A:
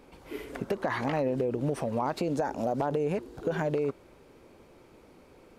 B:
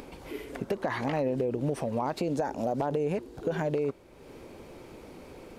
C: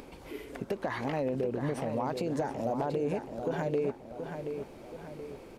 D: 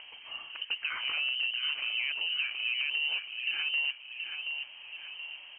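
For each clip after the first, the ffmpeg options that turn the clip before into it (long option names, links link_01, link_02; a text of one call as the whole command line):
ffmpeg -i in.wav -af "equalizer=frequency=1300:width_type=o:width=0.77:gain=-3,acompressor=mode=upward:threshold=-37dB:ratio=2.5" out.wav
ffmpeg -i in.wav -filter_complex "[0:a]asplit=2[link_01][link_02];[link_02]adelay=727,lowpass=frequency=4300:poles=1,volume=-7dB,asplit=2[link_03][link_04];[link_04]adelay=727,lowpass=frequency=4300:poles=1,volume=0.46,asplit=2[link_05][link_06];[link_06]adelay=727,lowpass=frequency=4300:poles=1,volume=0.46,asplit=2[link_07][link_08];[link_08]adelay=727,lowpass=frequency=4300:poles=1,volume=0.46,asplit=2[link_09][link_10];[link_10]adelay=727,lowpass=frequency=4300:poles=1,volume=0.46[link_11];[link_01][link_03][link_05][link_07][link_09][link_11]amix=inputs=6:normalize=0,volume=-3dB" out.wav
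ffmpeg -i in.wav -af "asoftclip=type=tanh:threshold=-21.5dB,lowpass=frequency=2700:width_type=q:width=0.5098,lowpass=frequency=2700:width_type=q:width=0.6013,lowpass=frequency=2700:width_type=q:width=0.9,lowpass=frequency=2700:width_type=q:width=2.563,afreqshift=-3200" out.wav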